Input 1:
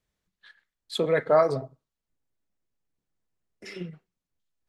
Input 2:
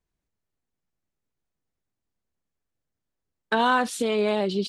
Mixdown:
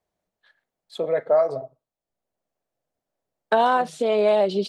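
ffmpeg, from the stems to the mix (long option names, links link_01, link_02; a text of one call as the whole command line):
ffmpeg -i stem1.wav -i stem2.wav -filter_complex "[0:a]volume=-8.5dB,asplit=2[link_01][link_02];[1:a]highpass=110,volume=-1dB[link_03];[link_02]apad=whole_len=206775[link_04];[link_03][link_04]sidechaincompress=threshold=-45dB:ratio=4:attack=12:release=667[link_05];[link_01][link_05]amix=inputs=2:normalize=0,equalizer=frequency=640:width_type=o:width=1:gain=14.5,acrossover=split=1200|7600[link_06][link_07][link_08];[link_06]acompressor=threshold=-16dB:ratio=4[link_09];[link_07]acompressor=threshold=-26dB:ratio=4[link_10];[link_08]acompressor=threshold=-55dB:ratio=4[link_11];[link_09][link_10][link_11]amix=inputs=3:normalize=0" out.wav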